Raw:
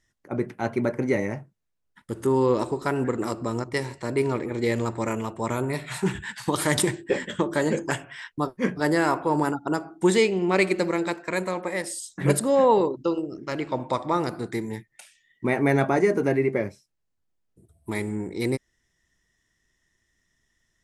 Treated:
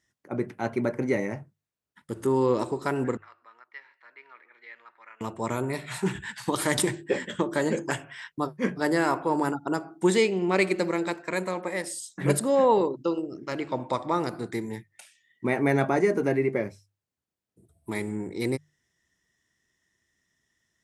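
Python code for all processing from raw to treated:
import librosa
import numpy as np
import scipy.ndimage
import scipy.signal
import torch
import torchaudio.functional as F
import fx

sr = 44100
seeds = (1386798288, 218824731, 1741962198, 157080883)

y = fx.chain(x, sr, fx.ladder_bandpass(hz=2000.0, resonance_pct=35),
    fx.air_absorb(metres=190.0), at=(3.17, 5.21))
y = scipy.signal.sosfilt(scipy.signal.butter(2, 79.0, 'highpass', fs=sr, output='sos'), y)
y = fx.hum_notches(y, sr, base_hz=50, count=3)
y = F.gain(torch.from_numpy(y), -2.0).numpy()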